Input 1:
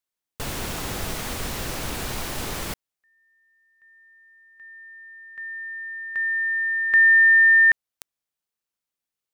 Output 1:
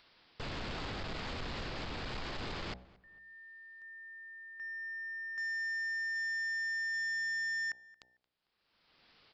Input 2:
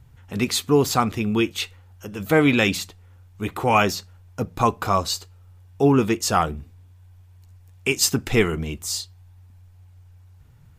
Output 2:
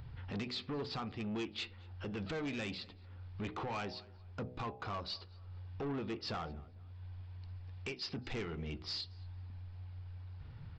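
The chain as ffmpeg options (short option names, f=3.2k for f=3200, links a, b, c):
-filter_complex "[0:a]aresample=11025,aresample=44100,acompressor=threshold=-32dB:ratio=5:attack=0.26:release=811:knee=1:detection=peak,bandreject=f=62.34:t=h:w=4,bandreject=f=124.68:t=h:w=4,bandreject=f=187.02:t=h:w=4,bandreject=f=249.36:t=h:w=4,bandreject=f=311.7:t=h:w=4,bandreject=f=374.04:t=h:w=4,bandreject=f=436.38:t=h:w=4,bandreject=f=498.72:t=h:w=4,bandreject=f=561.06:t=h:w=4,bandreject=f=623.4:t=h:w=4,bandreject=f=685.74:t=h:w=4,bandreject=f=748.08:t=h:w=4,bandreject=f=810.42:t=h:w=4,bandreject=f=872.76:t=h:w=4,aresample=16000,asoftclip=type=tanh:threshold=-37.5dB,aresample=44100,asplit=2[a][b];[b]adelay=225,lowpass=f=2.5k:p=1,volume=-21.5dB,asplit=2[c][d];[d]adelay=225,lowpass=f=2.5k:p=1,volume=0.31[e];[a][c][e]amix=inputs=3:normalize=0,acompressor=mode=upward:threshold=-50dB:ratio=4:attack=0.21:release=727:knee=2.83:detection=peak,volume=2.5dB"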